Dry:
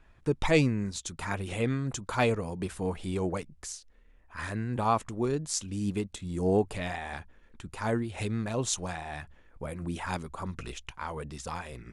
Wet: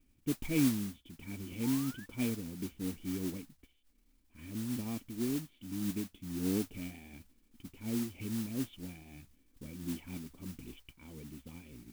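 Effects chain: painted sound rise, 1.63–2.06 s, 840–1800 Hz -24 dBFS; cascade formant filter i; modulation noise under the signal 12 dB; trim +2 dB

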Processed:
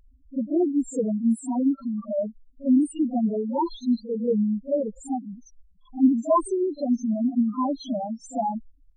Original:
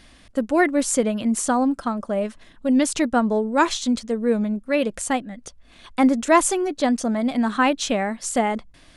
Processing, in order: loudest bins only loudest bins 2; reverse echo 43 ms -14.5 dB

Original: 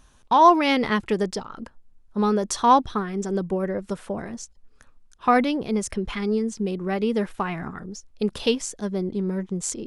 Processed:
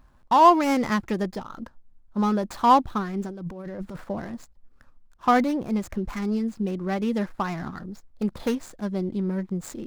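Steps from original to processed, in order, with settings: median filter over 15 samples; peaking EQ 430 Hz -9.5 dB 0.22 oct; 3.26–4.04 s: compressor with a negative ratio -35 dBFS, ratio -1

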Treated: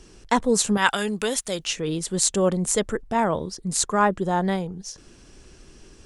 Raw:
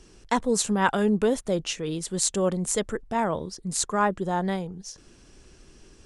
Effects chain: 0.77–1.67 s: tilt shelf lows -9.5 dB, about 1.3 kHz; trim +3.5 dB

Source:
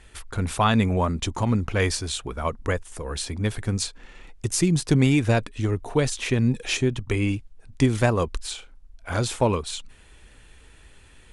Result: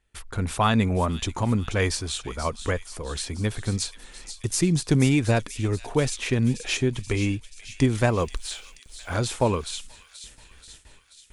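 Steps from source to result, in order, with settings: gate with hold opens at -39 dBFS; 8.17–9.16 s: word length cut 10-bit, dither none; on a send: feedback echo behind a high-pass 482 ms, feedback 61%, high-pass 3.2 kHz, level -9 dB; on the sum: trim -1 dB

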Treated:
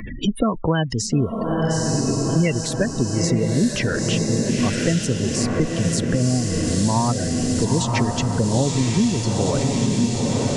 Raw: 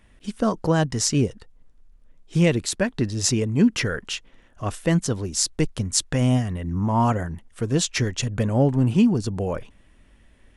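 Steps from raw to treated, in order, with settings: spectral gate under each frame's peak -20 dB strong; echo that smears into a reverb 949 ms, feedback 64%, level -4.5 dB; three bands compressed up and down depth 100%

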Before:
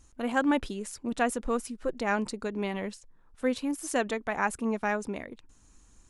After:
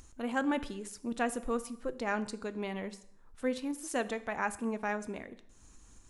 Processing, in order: upward compressor, threshold -42 dBFS; plate-style reverb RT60 0.71 s, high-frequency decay 0.85×, DRR 13 dB; trim -5 dB

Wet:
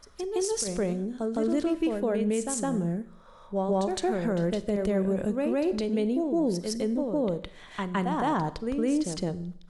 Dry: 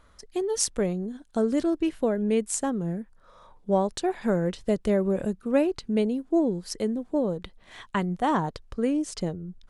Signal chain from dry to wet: reverse echo 162 ms -6 dB; Schroeder reverb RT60 0.67 s, combs from 31 ms, DRR 15.5 dB; peak limiter -18.5 dBFS, peak gain reduction 10.5 dB

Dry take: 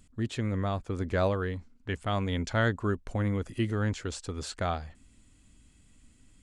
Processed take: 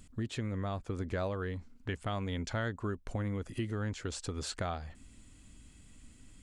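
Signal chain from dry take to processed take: compression 3:1, threshold -39 dBFS, peak gain reduction 13 dB; trim +3.5 dB

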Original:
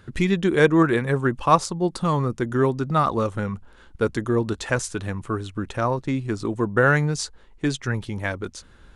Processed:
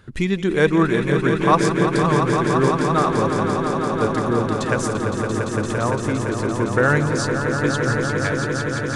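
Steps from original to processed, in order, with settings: 4.97–5.62 s: elliptic low-pass 540 Hz; echo with a slow build-up 171 ms, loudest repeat 5, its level -8 dB

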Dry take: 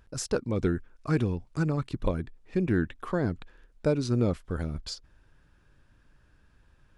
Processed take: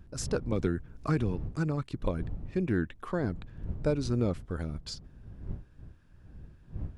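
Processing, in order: wind noise 99 Hz -38 dBFS; 0.52–1.37 s: three bands compressed up and down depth 70%; trim -3 dB

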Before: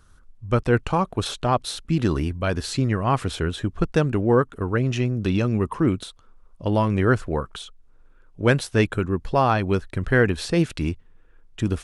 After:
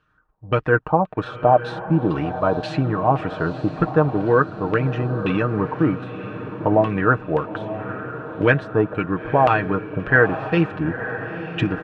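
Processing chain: companding laws mixed up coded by A; recorder AGC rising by 8.1 dB/s; high-pass 46 Hz; bass shelf 99 Hz -8 dB; band-stop 2.1 kHz, Q 7.2; comb 6.5 ms, depth 57%; LFO low-pass saw down 1.9 Hz 610–2700 Hz; on a send: echo that smears into a reverb 936 ms, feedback 50%, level -11 dB

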